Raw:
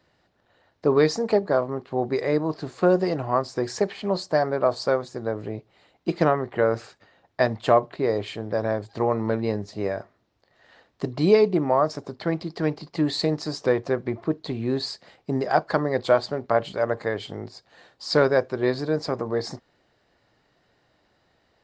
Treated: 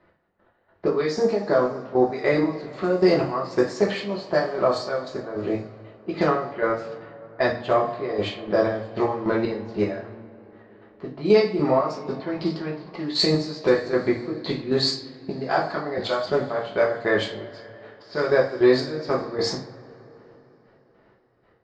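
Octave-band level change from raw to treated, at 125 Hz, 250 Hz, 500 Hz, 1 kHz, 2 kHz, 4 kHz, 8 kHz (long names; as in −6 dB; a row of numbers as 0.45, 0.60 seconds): −2.0 dB, +1.0 dB, +0.5 dB, −0.5 dB, +2.5 dB, +4.5 dB, can't be measured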